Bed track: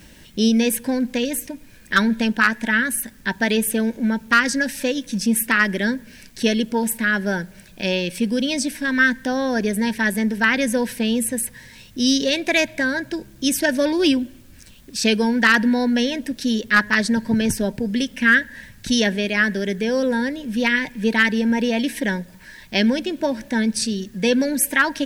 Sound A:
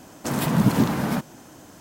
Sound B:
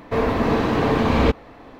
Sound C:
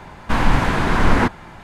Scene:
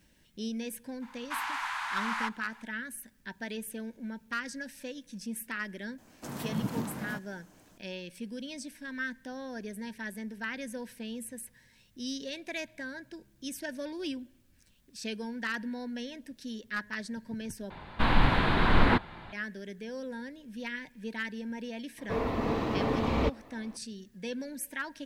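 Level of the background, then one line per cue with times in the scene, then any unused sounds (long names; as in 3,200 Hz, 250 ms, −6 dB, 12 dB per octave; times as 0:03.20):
bed track −19 dB
0:01.01: mix in C −11 dB, fades 0.02 s + Butterworth high-pass 860 Hz 48 dB per octave
0:05.98: mix in A −14.5 dB
0:17.70: overwrite with C −7.5 dB + high shelf with overshoot 4,900 Hz −7.5 dB, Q 3
0:21.98: mix in B −10.5 dB + notch filter 1,600 Hz, Q 10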